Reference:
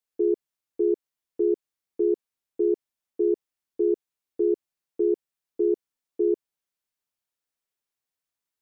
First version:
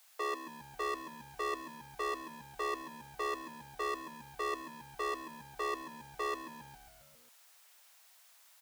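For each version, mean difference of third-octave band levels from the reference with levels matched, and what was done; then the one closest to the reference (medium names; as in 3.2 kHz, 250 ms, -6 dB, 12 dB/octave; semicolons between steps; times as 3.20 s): 22.0 dB: power-law waveshaper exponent 0.7; steep high-pass 630 Hz 36 dB/octave; on a send: frequency-shifting echo 135 ms, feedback 62%, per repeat -94 Hz, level -11 dB; on the sum: trim +4.5 dB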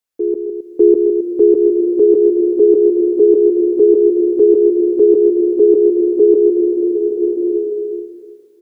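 1.5 dB: level rider gain up to 11 dB; loudspeakers at several distances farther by 54 m -6 dB, 91 m -9 dB; swelling reverb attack 1150 ms, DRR 3.5 dB; trim +3.5 dB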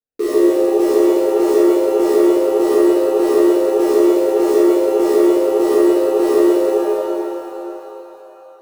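17.0 dB: local Wiener filter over 41 samples; in parallel at -2 dB: bit crusher 6-bit; on the sum: pitch-shifted reverb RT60 3.2 s, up +7 st, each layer -8 dB, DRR -11 dB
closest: second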